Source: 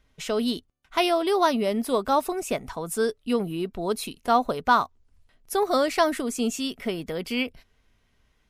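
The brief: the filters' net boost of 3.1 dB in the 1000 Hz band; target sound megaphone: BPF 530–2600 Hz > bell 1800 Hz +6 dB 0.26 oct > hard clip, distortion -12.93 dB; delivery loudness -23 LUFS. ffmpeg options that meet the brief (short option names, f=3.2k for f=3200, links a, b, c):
-af "highpass=530,lowpass=2.6k,equalizer=f=1k:t=o:g=4.5,equalizer=f=1.8k:t=o:w=0.26:g=6,asoftclip=type=hard:threshold=-13.5dB,volume=3.5dB"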